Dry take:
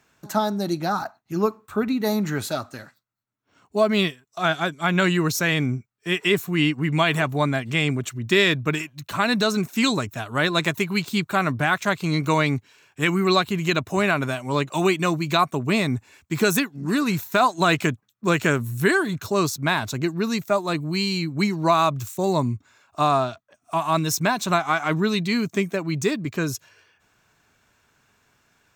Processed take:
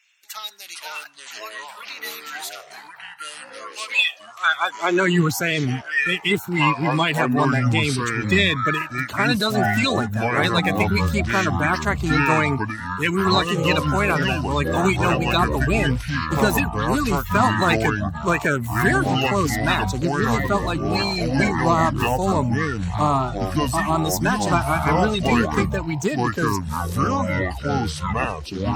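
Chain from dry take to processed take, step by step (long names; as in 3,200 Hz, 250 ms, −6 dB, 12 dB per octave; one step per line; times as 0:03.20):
spectral magnitudes quantised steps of 30 dB
high-pass filter sweep 2,500 Hz → 69 Hz, 0:04.30–0:05.46
delay with pitch and tempo change per echo 335 ms, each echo −6 semitones, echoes 3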